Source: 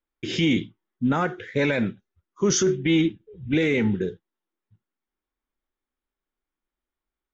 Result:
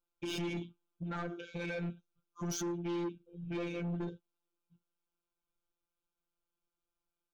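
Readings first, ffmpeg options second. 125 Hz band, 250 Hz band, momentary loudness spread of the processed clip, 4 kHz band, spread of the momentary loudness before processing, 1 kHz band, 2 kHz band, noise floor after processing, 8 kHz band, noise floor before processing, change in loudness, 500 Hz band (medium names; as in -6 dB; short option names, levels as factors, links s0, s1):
-12.5 dB, -15.5 dB, 9 LU, -16.0 dB, 9 LU, -13.0 dB, -17.0 dB, under -85 dBFS, no reading, under -85 dBFS, -15.5 dB, -16.0 dB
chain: -af "alimiter=limit=0.1:level=0:latency=1:release=217,afftfilt=real='hypot(re,im)*cos(PI*b)':imag='0':win_size=1024:overlap=0.75,asuperstop=centerf=1900:order=12:qfactor=3,asoftclip=type=tanh:threshold=0.0224"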